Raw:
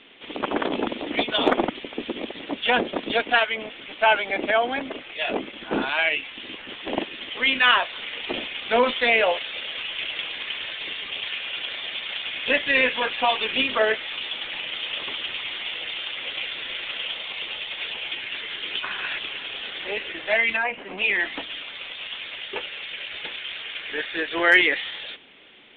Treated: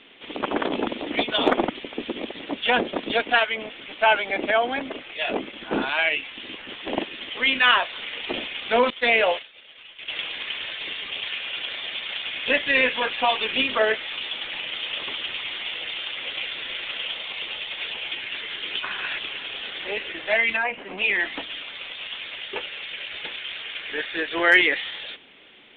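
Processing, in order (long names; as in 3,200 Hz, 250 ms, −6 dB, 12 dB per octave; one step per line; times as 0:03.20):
0:08.90–0:10.08: downward expander −21 dBFS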